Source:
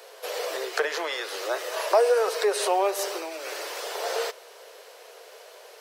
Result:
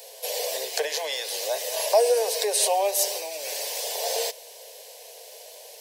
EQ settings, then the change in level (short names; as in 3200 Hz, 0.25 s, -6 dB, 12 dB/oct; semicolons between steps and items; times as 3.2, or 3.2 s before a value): high shelf 4800 Hz +11 dB; fixed phaser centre 350 Hz, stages 6; +1.5 dB